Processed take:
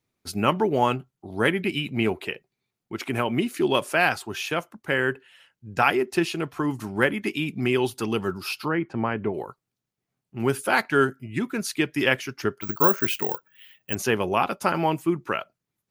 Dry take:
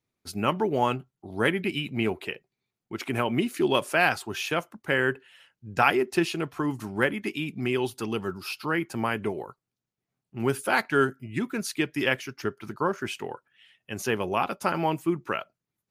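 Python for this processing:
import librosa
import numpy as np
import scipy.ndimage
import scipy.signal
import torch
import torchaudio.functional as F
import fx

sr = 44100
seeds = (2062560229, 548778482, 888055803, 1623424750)

y = fx.rider(x, sr, range_db=4, speed_s=2.0)
y = fx.spacing_loss(y, sr, db_at_10k=31, at=(8.68, 9.34))
y = fx.resample_bad(y, sr, factor=2, down='filtered', up='zero_stuff', at=(12.61, 13.95))
y = y * librosa.db_to_amplitude(2.0)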